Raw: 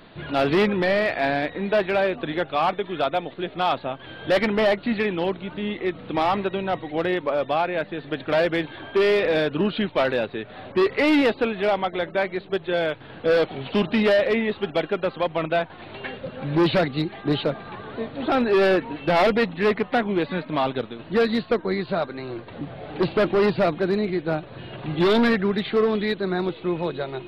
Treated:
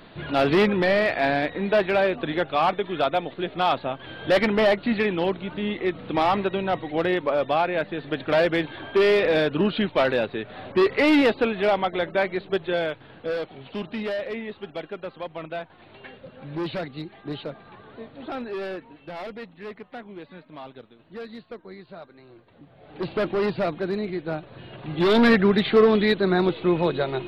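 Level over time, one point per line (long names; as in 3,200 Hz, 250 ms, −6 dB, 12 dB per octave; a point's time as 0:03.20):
0:12.61 +0.5 dB
0:13.44 −10 dB
0:18.16 −10 dB
0:19.13 −17 dB
0:22.70 −17 dB
0:23.13 −4.5 dB
0:24.86 −4.5 dB
0:25.35 +4 dB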